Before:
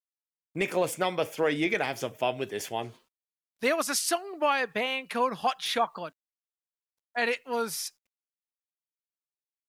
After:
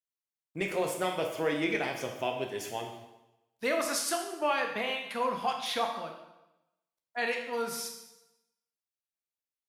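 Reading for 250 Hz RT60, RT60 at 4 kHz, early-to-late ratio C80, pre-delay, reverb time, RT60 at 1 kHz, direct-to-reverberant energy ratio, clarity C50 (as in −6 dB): 0.95 s, 0.85 s, 8.0 dB, 6 ms, 0.95 s, 0.95 s, 2.5 dB, 5.5 dB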